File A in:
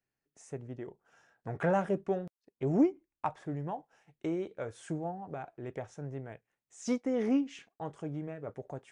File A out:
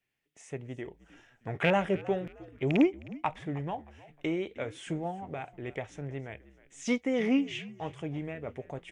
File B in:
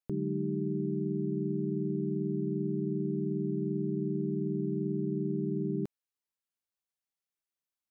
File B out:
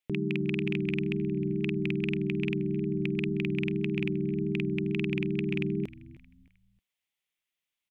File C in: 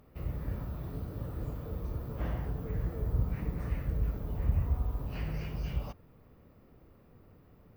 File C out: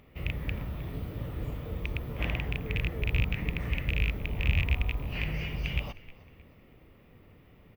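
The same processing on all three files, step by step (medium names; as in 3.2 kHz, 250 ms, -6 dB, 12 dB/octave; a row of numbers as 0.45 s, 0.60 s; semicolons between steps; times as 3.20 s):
rattle on loud lows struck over -28 dBFS, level -29 dBFS; wow and flutter 21 cents; high-order bell 2.6 kHz +10 dB 1.1 oct; frequency-shifting echo 311 ms, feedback 36%, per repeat -67 Hz, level -19 dB; trim +2 dB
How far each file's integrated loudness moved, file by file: +2.5 LU, +2.5 LU, +3.5 LU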